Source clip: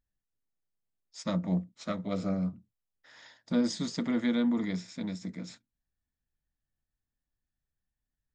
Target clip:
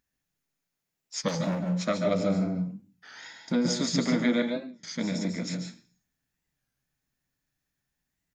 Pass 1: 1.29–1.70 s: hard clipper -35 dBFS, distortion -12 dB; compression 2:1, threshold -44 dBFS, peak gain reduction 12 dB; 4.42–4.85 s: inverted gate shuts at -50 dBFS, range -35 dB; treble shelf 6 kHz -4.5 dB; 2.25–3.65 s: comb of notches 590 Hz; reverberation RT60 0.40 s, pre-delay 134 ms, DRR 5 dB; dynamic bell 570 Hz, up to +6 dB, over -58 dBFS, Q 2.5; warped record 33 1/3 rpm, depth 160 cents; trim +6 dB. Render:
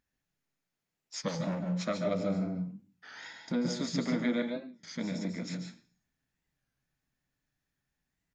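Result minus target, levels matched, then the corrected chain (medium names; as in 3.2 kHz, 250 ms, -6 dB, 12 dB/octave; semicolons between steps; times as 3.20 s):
compression: peak gain reduction +5 dB; 8 kHz band -3.0 dB
1.29–1.70 s: hard clipper -35 dBFS, distortion -12 dB; compression 2:1, threshold -33.5 dBFS, peak gain reduction 6.5 dB; 4.42–4.85 s: inverted gate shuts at -50 dBFS, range -35 dB; treble shelf 6 kHz +4 dB; 2.25–3.65 s: comb of notches 590 Hz; reverberation RT60 0.40 s, pre-delay 134 ms, DRR 5 dB; dynamic bell 570 Hz, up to +6 dB, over -58 dBFS, Q 2.5; warped record 33 1/3 rpm, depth 160 cents; trim +6 dB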